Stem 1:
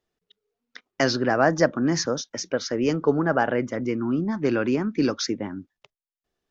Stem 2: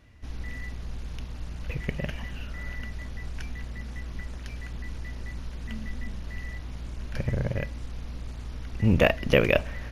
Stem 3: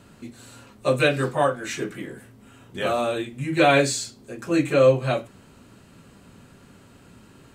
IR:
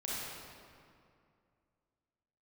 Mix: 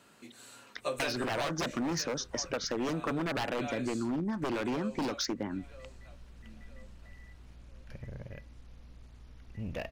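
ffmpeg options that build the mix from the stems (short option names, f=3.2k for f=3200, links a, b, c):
-filter_complex "[0:a]aeval=exprs='0.106*(abs(mod(val(0)/0.106+3,4)-2)-1)':c=same,volume=-1dB,asplit=2[a][b];[1:a]asoftclip=type=tanh:threshold=-14dB,adelay=750,volume=-15.5dB[c];[2:a]highpass=f=630:p=1,volume=-4.5dB,afade=t=out:st=1.43:d=0.27:silence=0.251189,asplit=2[d][e];[e]volume=-16.5dB[f];[b]apad=whole_len=470353[g];[c][g]sidechaincompress=threshold=-33dB:ratio=8:attack=16:release=203[h];[f]aecho=0:1:975|1950|2925|3900|4875:1|0.37|0.137|0.0507|0.0187[i];[a][h][d][i]amix=inputs=4:normalize=0,acompressor=threshold=-30dB:ratio=6"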